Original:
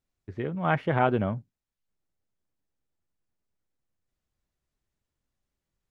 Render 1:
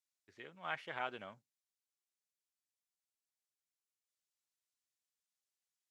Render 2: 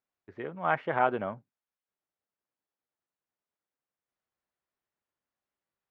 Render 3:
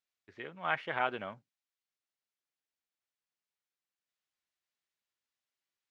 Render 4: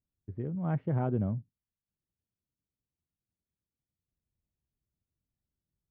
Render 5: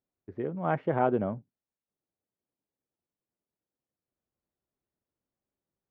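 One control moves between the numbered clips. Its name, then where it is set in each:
resonant band-pass, frequency: 7,900, 1,100, 3,100, 110, 420 Hertz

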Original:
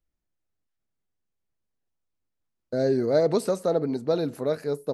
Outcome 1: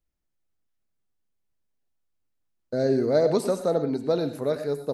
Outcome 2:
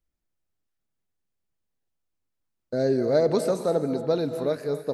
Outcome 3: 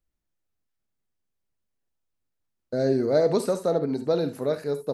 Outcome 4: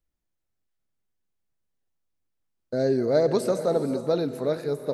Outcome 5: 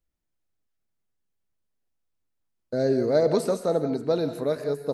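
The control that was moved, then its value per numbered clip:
reverb whose tail is shaped and stops, gate: 140, 310, 90, 500, 210 milliseconds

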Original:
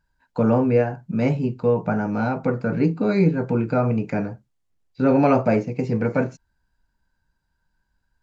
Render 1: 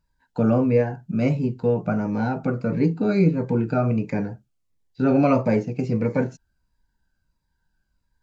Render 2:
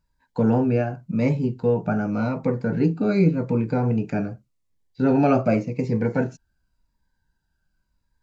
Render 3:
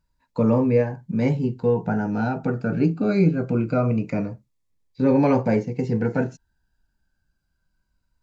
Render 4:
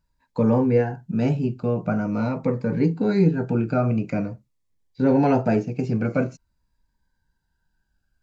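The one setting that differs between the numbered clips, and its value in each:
phaser whose notches keep moving one way, speed: 1.5, 0.88, 0.24, 0.46 Hertz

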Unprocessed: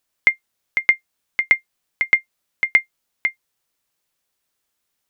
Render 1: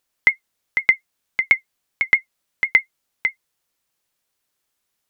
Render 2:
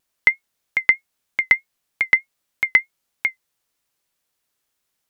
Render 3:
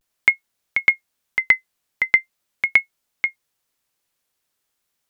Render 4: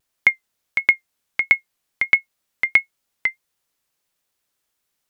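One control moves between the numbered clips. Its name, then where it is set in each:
pitch vibrato, speed: 14, 3.2, 0.43, 1.5 Hertz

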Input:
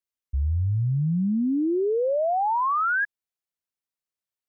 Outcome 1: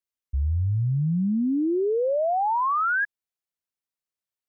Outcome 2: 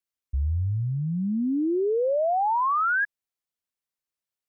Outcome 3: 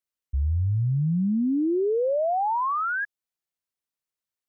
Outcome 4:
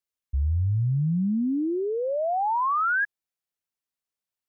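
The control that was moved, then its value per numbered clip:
dynamic equaliser, frequency: 8,400, 150, 1,700, 450 Hertz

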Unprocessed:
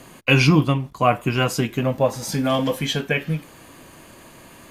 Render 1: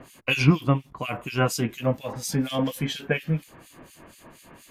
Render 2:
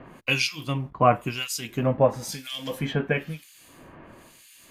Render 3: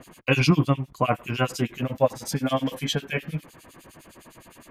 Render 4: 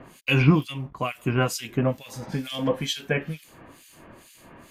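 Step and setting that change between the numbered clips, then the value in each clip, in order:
two-band tremolo in antiphase, speed: 4.2, 1, 9.8, 2.2 Hertz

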